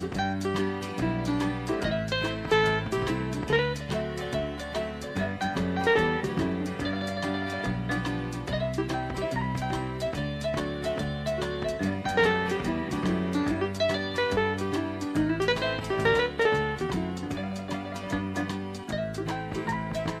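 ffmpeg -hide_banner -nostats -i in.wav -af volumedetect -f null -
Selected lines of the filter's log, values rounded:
mean_volume: -28.5 dB
max_volume: -11.9 dB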